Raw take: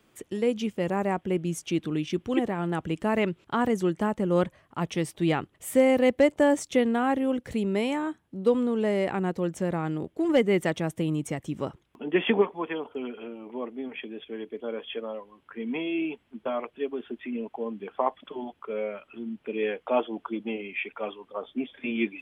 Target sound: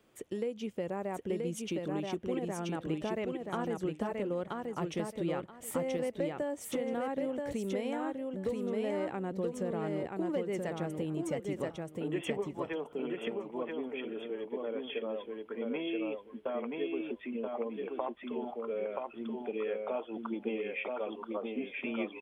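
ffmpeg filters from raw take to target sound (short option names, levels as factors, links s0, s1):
-af "equalizer=f=520:w=1.4:g=5.5,acompressor=threshold=0.0447:ratio=6,aecho=1:1:979|1958|2937:0.708|0.142|0.0283,volume=0.531"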